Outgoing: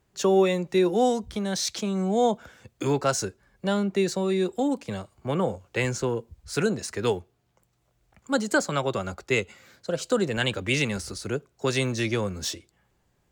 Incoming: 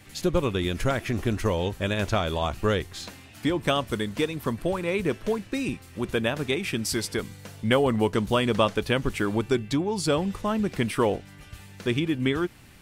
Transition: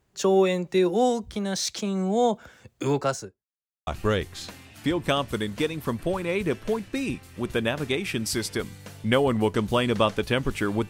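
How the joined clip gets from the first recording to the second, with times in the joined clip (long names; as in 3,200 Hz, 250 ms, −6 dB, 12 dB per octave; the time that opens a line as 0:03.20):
outgoing
0:02.98–0:03.46: fade out and dull
0:03.46–0:03.87: silence
0:03.87: continue with incoming from 0:02.46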